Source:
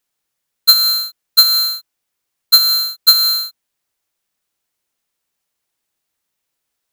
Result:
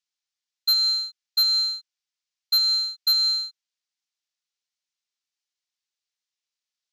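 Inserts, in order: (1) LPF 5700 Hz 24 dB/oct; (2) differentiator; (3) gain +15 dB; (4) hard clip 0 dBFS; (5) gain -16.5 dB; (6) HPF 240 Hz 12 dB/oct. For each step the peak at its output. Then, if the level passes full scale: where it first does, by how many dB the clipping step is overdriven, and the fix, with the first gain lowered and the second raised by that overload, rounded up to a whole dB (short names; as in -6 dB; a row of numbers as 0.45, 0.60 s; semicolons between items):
-1.0, -6.0, +9.0, 0.0, -16.5, -15.5 dBFS; step 3, 9.0 dB; step 3 +6 dB, step 5 -7.5 dB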